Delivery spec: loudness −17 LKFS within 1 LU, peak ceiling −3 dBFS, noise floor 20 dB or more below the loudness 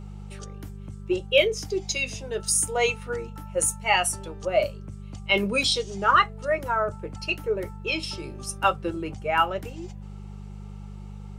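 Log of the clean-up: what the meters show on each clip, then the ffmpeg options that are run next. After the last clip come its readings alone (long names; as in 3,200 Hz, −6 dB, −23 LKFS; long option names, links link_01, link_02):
mains hum 50 Hz; hum harmonics up to 200 Hz; level of the hum −36 dBFS; integrated loudness −25.0 LKFS; sample peak −6.5 dBFS; target loudness −17.0 LKFS
→ -af "bandreject=frequency=50:width_type=h:width=4,bandreject=frequency=100:width_type=h:width=4,bandreject=frequency=150:width_type=h:width=4,bandreject=frequency=200:width_type=h:width=4"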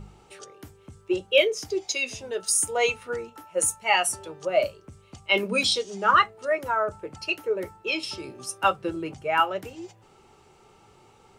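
mains hum none found; integrated loudness −25.5 LKFS; sample peak −6.5 dBFS; target loudness −17.0 LKFS
→ -af "volume=8.5dB,alimiter=limit=-3dB:level=0:latency=1"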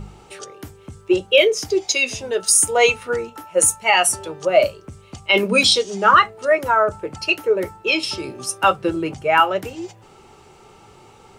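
integrated loudness −17.5 LKFS; sample peak −3.0 dBFS; background noise floor −48 dBFS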